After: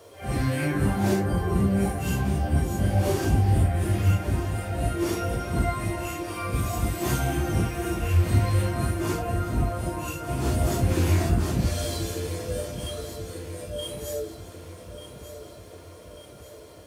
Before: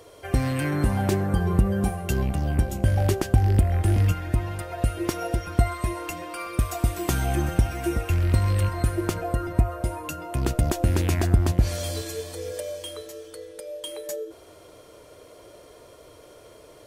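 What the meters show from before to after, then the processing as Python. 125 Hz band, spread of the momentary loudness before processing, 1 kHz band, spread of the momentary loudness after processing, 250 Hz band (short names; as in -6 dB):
-1.0 dB, 12 LU, +0.5 dB, 19 LU, +0.5 dB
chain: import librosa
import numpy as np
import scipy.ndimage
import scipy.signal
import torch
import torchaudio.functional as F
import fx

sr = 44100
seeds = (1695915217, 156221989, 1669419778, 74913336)

p1 = fx.phase_scramble(x, sr, seeds[0], window_ms=200)
p2 = scipy.signal.sosfilt(scipy.signal.butter(2, 67.0, 'highpass', fs=sr, output='sos'), p1)
p3 = fx.quant_dither(p2, sr, seeds[1], bits=12, dither='triangular')
y = p3 + fx.echo_feedback(p3, sr, ms=1190, feedback_pct=55, wet_db=-12.0, dry=0)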